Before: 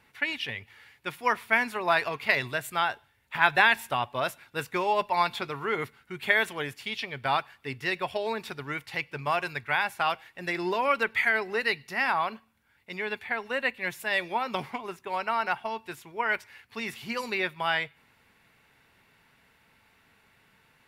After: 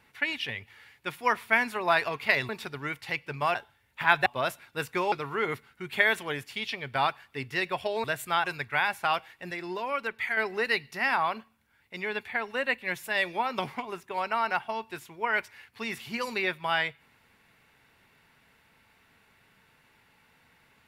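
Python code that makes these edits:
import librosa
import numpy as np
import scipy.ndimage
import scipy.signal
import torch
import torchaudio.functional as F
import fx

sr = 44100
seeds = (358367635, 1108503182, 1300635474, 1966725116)

y = fx.edit(x, sr, fx.swap(start_s=2.49, length_s=0.4, other_s=8.34, other_length_s=1.06),
    fx.cut(start_s=3.6, length_s=0.45),
    fx.cut(start_s=4.91, length_s=0.51),
    fx.clip_gain(start_s=10.47, length_s=0.86, db=-6.0), tone=tone)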